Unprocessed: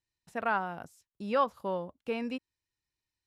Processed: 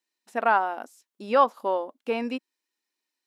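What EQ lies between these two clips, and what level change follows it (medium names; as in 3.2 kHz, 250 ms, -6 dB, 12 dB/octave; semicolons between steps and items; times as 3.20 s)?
dynamic bell 800 Hz, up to +5 dB, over -42 dBFS, Q 1.7; brick-wall FIR high-pass 210 Hz; +5.5 dB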